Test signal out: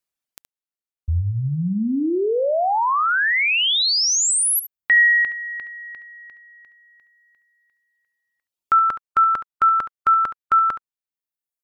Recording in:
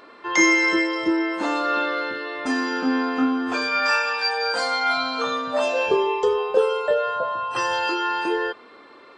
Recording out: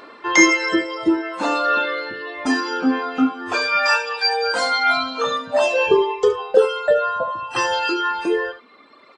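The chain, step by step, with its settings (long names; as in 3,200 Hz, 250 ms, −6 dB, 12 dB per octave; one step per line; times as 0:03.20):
reverb reduction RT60 1.9 s
on a send: single-tap delay 71 ms −13 dB
on the sum: level +5.5 dB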